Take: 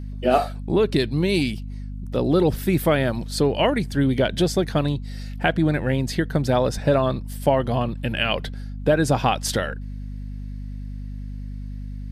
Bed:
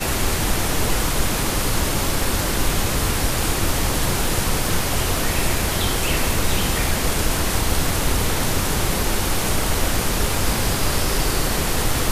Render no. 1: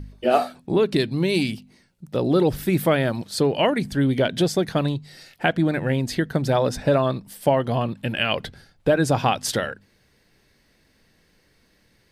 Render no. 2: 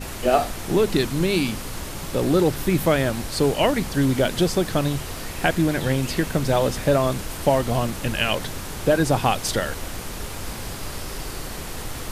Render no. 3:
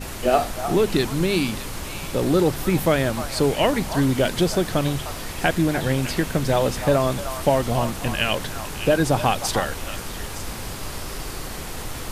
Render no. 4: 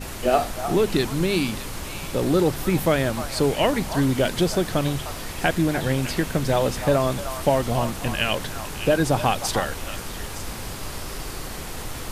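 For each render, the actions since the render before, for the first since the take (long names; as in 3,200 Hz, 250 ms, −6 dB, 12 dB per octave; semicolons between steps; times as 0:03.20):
hum removal 50 Hz, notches 5
mix in bed −11.5 dB
echo through a band-pass that steps 304 ms, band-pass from 1,000 Hz, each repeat 1.4 octaves, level −6 dB
level −1 dB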